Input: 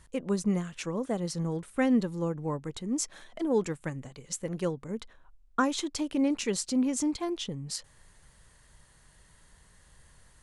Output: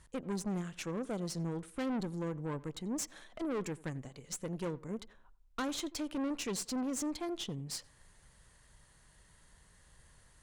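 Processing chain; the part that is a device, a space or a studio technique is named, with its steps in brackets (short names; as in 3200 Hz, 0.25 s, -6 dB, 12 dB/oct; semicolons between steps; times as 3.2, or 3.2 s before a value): rockabilly slapback (tube stage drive 31 dB, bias 0.5; tape echo 88 ms, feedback 32%, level -18.5 dB, low-pass 1800 Hz); gain -1.5 dB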